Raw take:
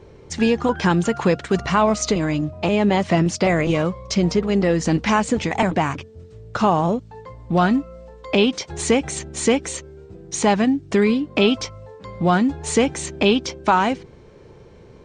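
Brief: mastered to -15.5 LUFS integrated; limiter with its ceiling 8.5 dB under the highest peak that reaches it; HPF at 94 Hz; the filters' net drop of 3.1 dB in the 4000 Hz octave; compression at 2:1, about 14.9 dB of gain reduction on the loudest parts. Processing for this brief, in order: HPF 94 Hz; bell 4000 Hz -4.5 dB; compressor 2:1, threshold -41 dBFS; gain +21 dB; limiter -5 dBFS

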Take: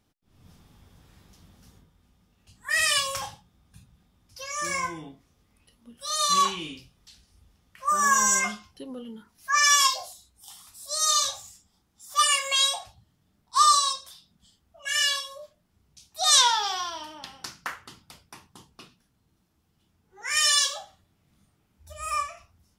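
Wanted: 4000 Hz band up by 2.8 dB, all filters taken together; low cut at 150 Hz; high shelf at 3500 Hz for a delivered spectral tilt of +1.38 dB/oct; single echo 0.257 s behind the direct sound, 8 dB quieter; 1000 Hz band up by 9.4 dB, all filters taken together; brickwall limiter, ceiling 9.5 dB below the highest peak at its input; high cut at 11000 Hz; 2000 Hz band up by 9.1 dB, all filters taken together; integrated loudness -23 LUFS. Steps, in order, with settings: HPF 150 Hz; LPF 11000 Hz; bell 1000 Hz +8.5 dB; bell 2000 Hz +9 dB; high shelf 3500 Hz -6 dB; bell 4000 Hz +4 dB; limiter -9.5 dBFS; echo 0.257 s -8 dB; gain -3 dB

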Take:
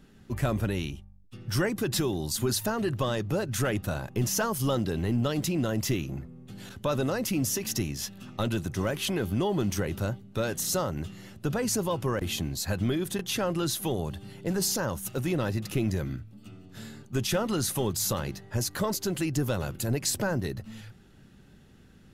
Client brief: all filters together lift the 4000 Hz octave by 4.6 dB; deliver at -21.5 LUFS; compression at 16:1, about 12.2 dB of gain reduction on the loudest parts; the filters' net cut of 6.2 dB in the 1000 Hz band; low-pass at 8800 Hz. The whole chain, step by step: LPF 8800 Hz; bell 1000 Hz -9 dB; bell 4000 Hz +6.5 dB; compressor 16:1, threshold -35 dBFS; gain +18 dB

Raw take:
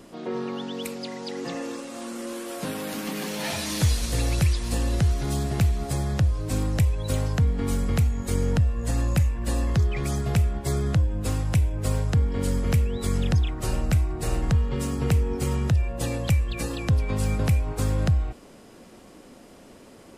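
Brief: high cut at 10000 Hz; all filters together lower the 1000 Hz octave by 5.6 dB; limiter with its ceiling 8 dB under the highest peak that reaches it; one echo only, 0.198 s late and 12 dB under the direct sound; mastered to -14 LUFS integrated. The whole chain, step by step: LPF 10000 Hz; bell 1000 Hz -8 dB; limiter -19 dBFS; echo 0.198 s -12 dB; gain +14.5 dB

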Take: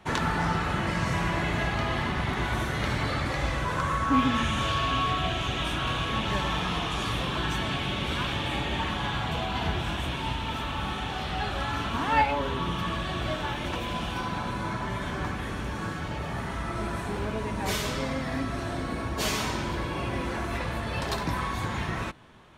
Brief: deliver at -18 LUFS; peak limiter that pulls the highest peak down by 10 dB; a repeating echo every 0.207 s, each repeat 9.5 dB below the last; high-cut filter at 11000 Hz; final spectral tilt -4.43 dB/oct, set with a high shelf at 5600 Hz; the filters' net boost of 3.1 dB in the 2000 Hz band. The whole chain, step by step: LPF 11000 Hz; bell 2000 Hz +3.5 dB; high shelf 5600 Hz +3.5 dB; limiter -19.5 dBFS; feedback echo 0.207 s, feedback 33%, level -9.5 dB; gain +11 dB

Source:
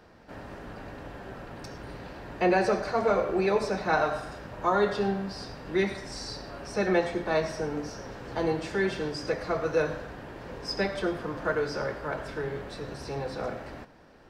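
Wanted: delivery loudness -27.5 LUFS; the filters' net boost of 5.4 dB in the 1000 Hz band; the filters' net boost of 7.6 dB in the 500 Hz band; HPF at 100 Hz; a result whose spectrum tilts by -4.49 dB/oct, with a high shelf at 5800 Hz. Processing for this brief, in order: HPF 100 Hz; bell 500 Hz +8.5 dB; bell 1000 Hz +4 dB; high shelf 5800 Hz -4 dB; gain -4.5 dB

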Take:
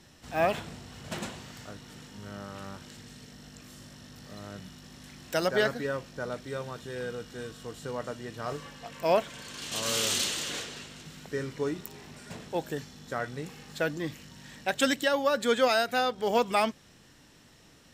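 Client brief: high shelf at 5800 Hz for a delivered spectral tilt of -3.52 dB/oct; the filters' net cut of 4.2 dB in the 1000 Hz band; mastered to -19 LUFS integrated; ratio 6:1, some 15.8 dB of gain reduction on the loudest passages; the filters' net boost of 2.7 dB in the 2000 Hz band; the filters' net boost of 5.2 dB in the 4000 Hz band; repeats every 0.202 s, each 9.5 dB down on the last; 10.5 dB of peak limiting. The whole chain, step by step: bell 1000 Hz -8 dB; bell 2000 Hz +5.5 dB; bell 4000 Hz +7.5 dB; high shelf 5800 Hz -6.5 dB; compressor 6:1, threshold -38 dBFS; limiter -33.5 dBFS; feedback echo 0.202 s, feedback 33%, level -9.5 dB; gain +25 dB

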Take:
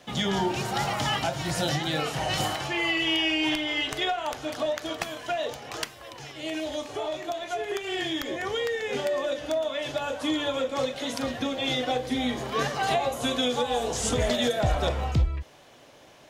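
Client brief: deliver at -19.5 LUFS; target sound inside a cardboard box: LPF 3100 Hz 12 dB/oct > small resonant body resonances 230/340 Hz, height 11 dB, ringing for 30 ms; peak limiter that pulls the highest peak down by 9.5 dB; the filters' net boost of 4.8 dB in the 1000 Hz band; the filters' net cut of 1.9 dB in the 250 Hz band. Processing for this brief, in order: bell 250 Hz -3 dB; bell 1000 Hz +7 dB; limiter -19 dBFS; LPF 3100 Hz 12 dB/oct; small resonant body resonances 230/340 Hz, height 11 dB, ringing for 30 ms; gain +6 dB

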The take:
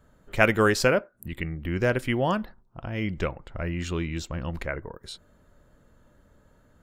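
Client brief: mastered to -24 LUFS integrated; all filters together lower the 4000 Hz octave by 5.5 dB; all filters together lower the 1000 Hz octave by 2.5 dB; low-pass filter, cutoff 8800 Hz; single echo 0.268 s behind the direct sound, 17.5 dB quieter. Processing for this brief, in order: LPF 8800 Hz; bell 1000 Hz -3 dB; bell 4000 Hz -7.5 dB; echo 0.268 s -17.5 dB; gain +4 dB

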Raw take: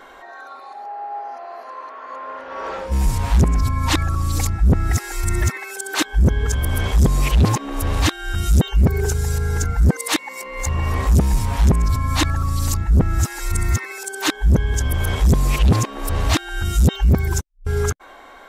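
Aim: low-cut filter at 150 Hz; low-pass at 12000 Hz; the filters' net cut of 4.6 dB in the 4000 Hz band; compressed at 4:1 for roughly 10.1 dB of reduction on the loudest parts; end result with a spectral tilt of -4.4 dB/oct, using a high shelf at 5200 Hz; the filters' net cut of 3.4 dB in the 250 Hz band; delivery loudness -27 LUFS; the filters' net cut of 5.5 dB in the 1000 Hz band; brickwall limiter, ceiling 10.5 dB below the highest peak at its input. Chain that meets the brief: HPF 150 Hz; LPF 12000 Hz; bell 250 Hz -3 dB; bell 1000 Hz -6.5 dB; bell 4000 Hz -7 dB; high shelf 5200 Hz +3.5 dB; compressor 4:1, threshold -27 dBFS; gain +8 dB; limiter -17 dBFS

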